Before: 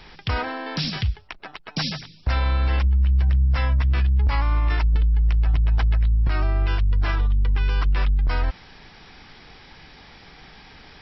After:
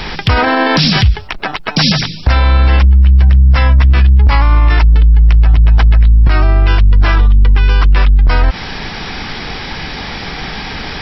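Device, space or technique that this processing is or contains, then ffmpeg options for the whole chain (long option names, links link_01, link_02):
mastering chain: -af "equalizer=frequency=210:width_type=o:width=0.37:gain=2.5,acompressor=threshold=-23dB:ratio=2.5,asoftclip=type=hard:threshold=-15.5dB,alimiter=level_in=24dB:limit=-1dB:release=50:level=0:latency=1,volume=-1dB"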